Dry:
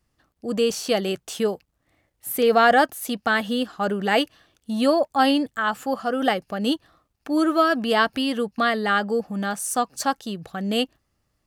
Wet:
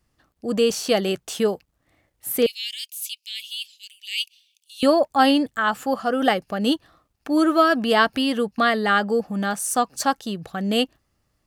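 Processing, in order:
0:02.46–0:04.83: Butterworth high-pass 2,400 Hz 72 dB per octave
level +2 dB

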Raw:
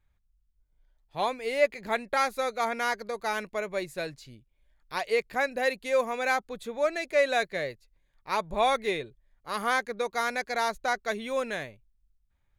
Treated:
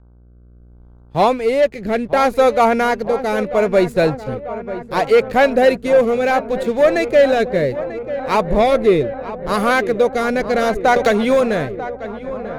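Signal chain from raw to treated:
tilt shelving filter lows +6 dB, about 930 Hz
leveller curve on the samples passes 2
automatic gain control gain up to 12 dB
hum with harmonics 60 Hz, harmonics 26, −43 dBFS −8 dB per octave
rotating-speaker cabinet horn 0.7 Hz
feedback echo with a low-pass in the loop 942 ms, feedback 77%, low-pass 2,100 Hz, level −13 dB
0:10.96–0:11.41: multiband upward and downward compressor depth 100%
level −1 dB

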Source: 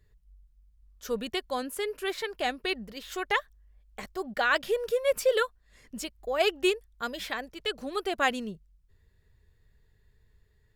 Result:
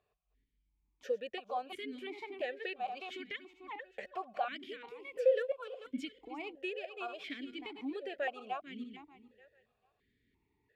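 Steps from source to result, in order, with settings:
feedback delay that plays each chunk backwards 221 ms, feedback 41%, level −8 dB
downward compressor 2.5 to 1, threshold −40 dBFS, peak gain reduction 14 dB
formant filter that steps through the vowels 2.9 Hz
level +10.5 dB

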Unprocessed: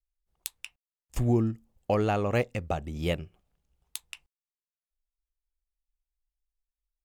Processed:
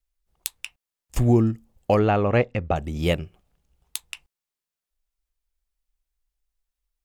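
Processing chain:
0:01.99–0:02.76: low-pass filter 3,000 Hz 12 dB per octave
level +6.5 dB

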